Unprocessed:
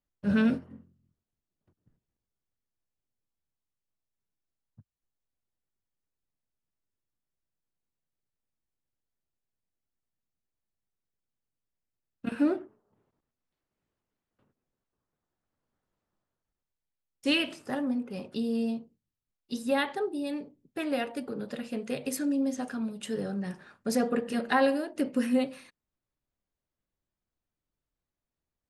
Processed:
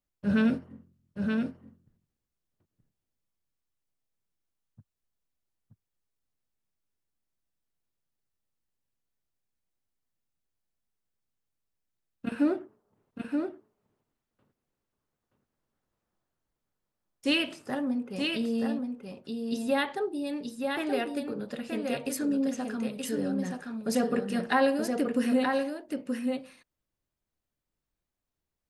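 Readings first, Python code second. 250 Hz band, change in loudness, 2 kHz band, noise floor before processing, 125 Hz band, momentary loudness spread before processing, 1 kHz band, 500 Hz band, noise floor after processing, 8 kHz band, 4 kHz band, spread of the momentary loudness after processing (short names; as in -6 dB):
+1.5 dB, +0.5 dB, +1.5 dB, under -85 dBFS, +1.5 dB, 11 LU, +1.5 dB, +1.5 dB, under -85 dBFS, +1.5 dB, +1.5 dB, 11 LU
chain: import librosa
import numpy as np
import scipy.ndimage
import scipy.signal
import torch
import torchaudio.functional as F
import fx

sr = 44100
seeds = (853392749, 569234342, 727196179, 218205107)

y = x + 10.0 ** (-4.5 / 20.0) * np.pad(x, (int(926 * sr / 1000.0), 0))[:len(x)]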